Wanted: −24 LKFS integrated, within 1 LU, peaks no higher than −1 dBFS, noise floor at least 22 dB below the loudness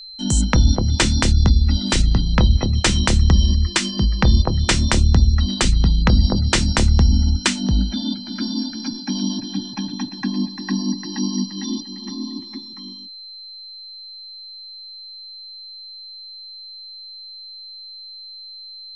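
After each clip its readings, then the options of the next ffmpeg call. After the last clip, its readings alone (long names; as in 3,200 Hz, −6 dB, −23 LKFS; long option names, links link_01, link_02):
interfering tone 4,100 Hz; level of the tone −35 dBFS; integrated loudness −19.0 LKFS; sample peak −1.5 dBFS; target loudness −24.0 LKFS
→ -af "bandreject=frequency=4100:width=30"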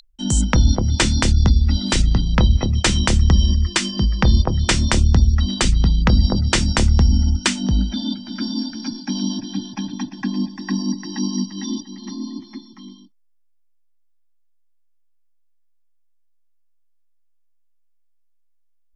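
interfering tone none found; integrated loudness −19.0 LKFS; sample peak −1.5 dBFS; target loudness −24.0 LKFS
→ -af "volume=-5dB"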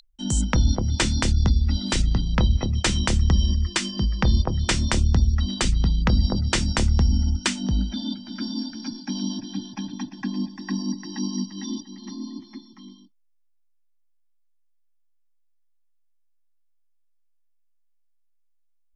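integrated loudness −24.0 LKFS; sample peak −6.5 dBFS; background noise floor −63 dBFS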